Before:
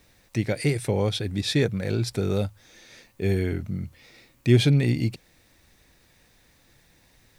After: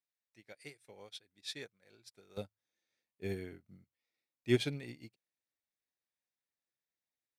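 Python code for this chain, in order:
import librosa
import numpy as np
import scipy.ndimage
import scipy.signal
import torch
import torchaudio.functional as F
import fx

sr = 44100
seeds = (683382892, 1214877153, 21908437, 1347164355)

y = fx.highpass(x, sr, hz=fx.steps((0.0, 1000.0), (2.37, 210.0), (3.84, 440.0)), slope=6)
y = fx.upward_expand(y, sr, threshold_db=-42.0, expansion=2.5)
y = y * librosa.db_to_amplitude(-3.0)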